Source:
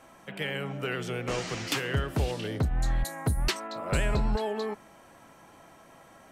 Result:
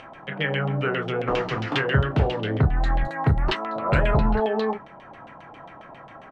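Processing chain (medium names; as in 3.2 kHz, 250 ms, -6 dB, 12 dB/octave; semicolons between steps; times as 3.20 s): dynamic bell 2.3 kHz, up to -5 dB, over -48 dBFS, Q 2.4; upward compressor, threshold -48 dBFS; peaking EQ 140 Hz +6 dB 0.24 oct; on a send: early reflections 27 ms -8 dB, 37 ms -9 dB; on the sum: LFO low-pass saw down 7.4 Hz 690–3300 Hz; trim +5 dB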